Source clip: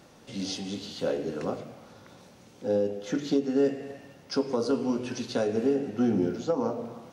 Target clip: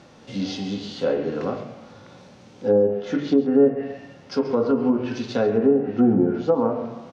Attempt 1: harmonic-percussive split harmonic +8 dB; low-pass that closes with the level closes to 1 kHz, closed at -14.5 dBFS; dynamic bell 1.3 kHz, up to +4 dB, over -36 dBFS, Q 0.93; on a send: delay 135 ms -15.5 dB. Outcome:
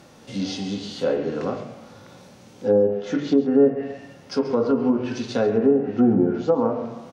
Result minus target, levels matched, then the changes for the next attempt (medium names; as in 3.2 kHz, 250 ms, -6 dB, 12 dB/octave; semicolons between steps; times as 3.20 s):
8 kHz band +4.0 dB
add after dynamic bell: low-pass 5.7 kHz 12 dB/octave